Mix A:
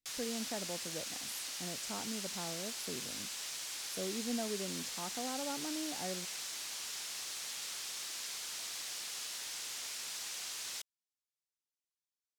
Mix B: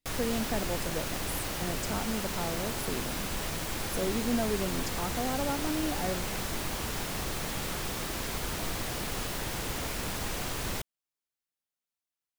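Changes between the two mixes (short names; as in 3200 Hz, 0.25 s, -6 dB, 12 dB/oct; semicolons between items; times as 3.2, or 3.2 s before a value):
speech +8.0 dB; background: remove band-pass 5900 Hz, Q 0.99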